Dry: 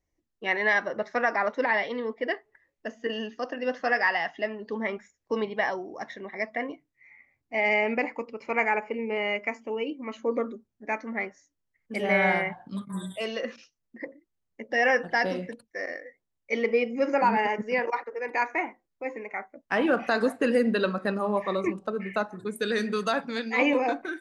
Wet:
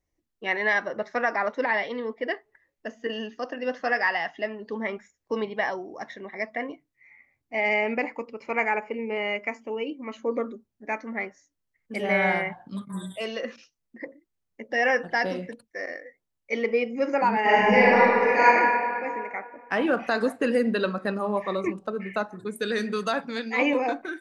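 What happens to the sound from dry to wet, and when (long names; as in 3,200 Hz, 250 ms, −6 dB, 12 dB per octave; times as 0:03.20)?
0:17.41–0:18.43: thrown reverb, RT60 2.3 s, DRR −11 dB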